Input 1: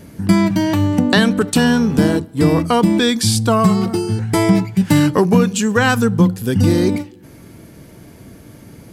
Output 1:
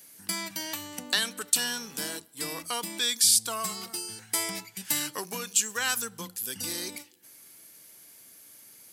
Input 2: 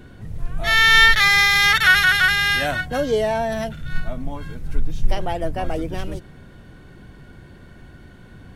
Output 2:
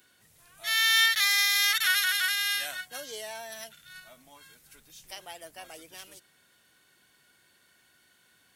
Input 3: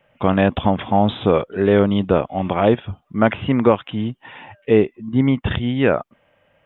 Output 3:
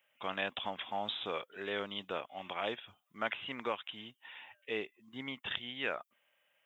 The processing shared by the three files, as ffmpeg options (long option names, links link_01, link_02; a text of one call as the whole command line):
ffmpeg -i in.wav -af "aderivative" out.wav